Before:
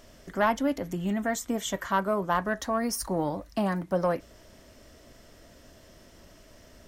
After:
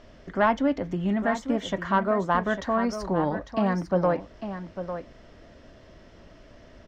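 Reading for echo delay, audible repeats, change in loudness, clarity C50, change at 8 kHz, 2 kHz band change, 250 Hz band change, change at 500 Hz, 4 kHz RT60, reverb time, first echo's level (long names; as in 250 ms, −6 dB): 850 ms, 1, +2.5 dB, no reverb audible, −11.5 dB, +2.5 dB, +3.5 dB, +3.5 dB, no reverb audible, no reverb audible, −10.0 dB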